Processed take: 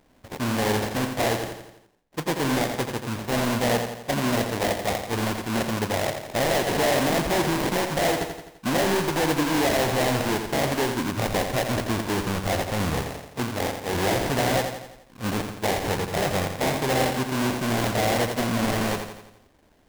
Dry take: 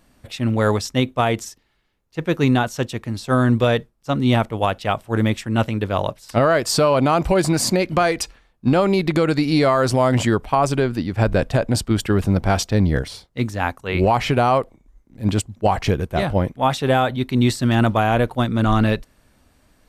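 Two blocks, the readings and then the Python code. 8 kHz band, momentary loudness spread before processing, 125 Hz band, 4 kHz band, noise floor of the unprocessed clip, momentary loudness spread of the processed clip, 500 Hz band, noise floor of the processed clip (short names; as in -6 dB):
-1.0 dB, 8 LU, -9.0 dB, -1.0 dB, -60 dBFS, 7 LU, -5.0 dB, -57 dBFS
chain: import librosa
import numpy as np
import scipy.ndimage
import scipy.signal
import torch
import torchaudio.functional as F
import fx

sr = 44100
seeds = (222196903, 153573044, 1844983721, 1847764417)

p1 = fx.sample_hold(x, sr, seeds[0], rate_hz=1300.0, jitter_pct=20)
p2 = np.clip(p1, -10.0 ** (-19.0 / 20.0), 10.0 ** (-19.0 / 20.0))
p3 = fx.low_shelf(p2, sr, hz=180.0, db=-9.0)
y = p3 + fx.echo_feedback(p3, sr, ms=85, feedback_pct=52, wet_db=-7.0, dry=0)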